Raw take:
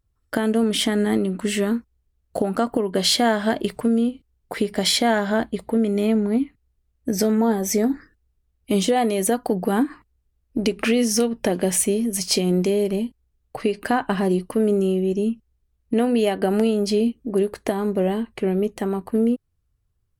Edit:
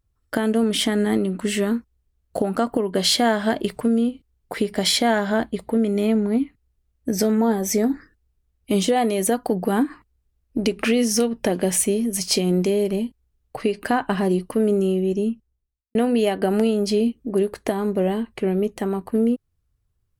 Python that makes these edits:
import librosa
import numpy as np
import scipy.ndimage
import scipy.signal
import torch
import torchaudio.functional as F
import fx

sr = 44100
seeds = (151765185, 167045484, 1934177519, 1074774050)

y = fx.studio_fade_out(x, sr, start_s=15.13, length_s=0.82)